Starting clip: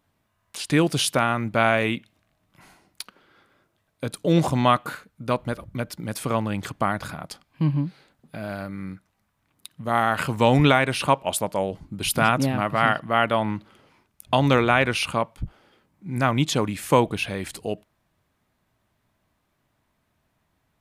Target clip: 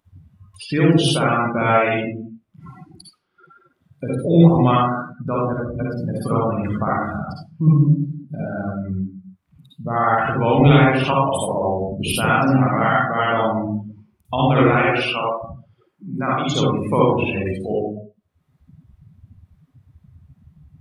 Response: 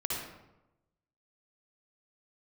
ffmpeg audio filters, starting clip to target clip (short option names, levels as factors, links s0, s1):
-filter_complex "[0:a]asettb=1/sr,asplit=3[s0][s1][s2];[s0]atrim=end=14.794[s3];[s1]atrim=start=14.79:end=16.45,asetpts=PTS-STARTPTS,afade=t=in:d=0.004:c=qsin,afade=t=out:st=1.656:d=0.004:c=qsin,highpass=f=410:p=1[s4];[s2]atrim=start=16.446[s5];[s3][s4]acrossfade=d=0.004:c1=hsin:c2=qsin[s6];[s6][s5]acrossfade=d=0.004:c1=qsin:c2=hsin,acompressor=mode=upward:threshold=0.0447:ratio=2.5,asplit=2[s7][s8];[s8]alimiter=limit=0.188:level=0:latency=1:release=354,volume=1.41[s9];[s7][s9]amix=inputs=2:normalize=0[s10];[1:a]atrim=start_sample=2205,asetrate=48510,aresample=44100[s11];[s10][s11]afir=irnorm=-1:irlink=0,afftdn=nr=32:nf=-20,volume=0.596"